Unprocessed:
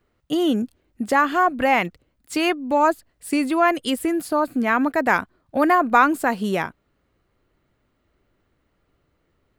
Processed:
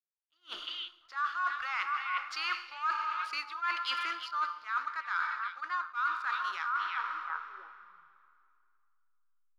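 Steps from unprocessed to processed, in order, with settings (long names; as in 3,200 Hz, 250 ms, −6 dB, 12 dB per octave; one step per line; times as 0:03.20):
one-sided soft clipper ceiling −6 dBFS
drawn EQ curve 110 Hz 0 dB, 210 Hz −29 dB, 350 Hz −14 dB, 660 Hz −24 dB, 1,300 Hz +12 dB, 1,800 Hz 0 dB, 2,900 Hz +1 dB, 4,800 Hz +9 dB, 7,200 Hz −3 dB, 13,000 Hz −8 dB
slack as between gear wheels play −33 dBFS
three-way crossover with the lows and the highs turned down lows −23 dB, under 580 Hz, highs −17 dB, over 6,600 Hz
notch filter 7,900 Hz, Q 7.6
on a send: echo through a band-pass that steps 351 ms, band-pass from 2,800 Hz, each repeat −1.4 octaves, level −8 dB
on the sum: dense smooth reverb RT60 2.3 s, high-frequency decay 0.85×, DRR 11 dB
reversed playback
downward compressor 10 to 1, threshold −35 dBFS, peak gain reduction 27.5 dB
reversed playback
level that may rise only so fast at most 320 dB per second
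level +4.5 dB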